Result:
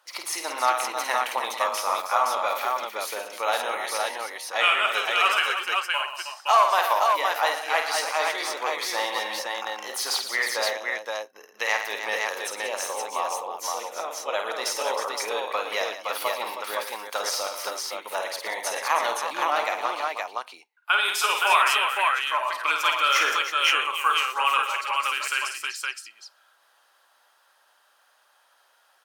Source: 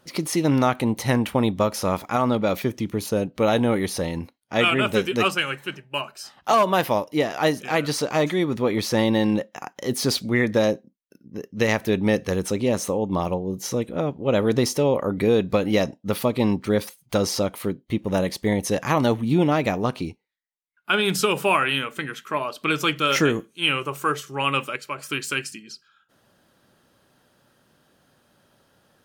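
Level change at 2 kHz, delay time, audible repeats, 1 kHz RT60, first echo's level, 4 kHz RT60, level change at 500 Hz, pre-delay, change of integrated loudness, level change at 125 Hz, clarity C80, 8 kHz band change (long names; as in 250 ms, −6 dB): +2.5 dB, 51 ms, 5, no reverb audible, −6.0 dB, no reverb audible, −8.0 dB, no reverb audible, −2.0 dB, below −40 dB, no reverb audible, +1.5 dB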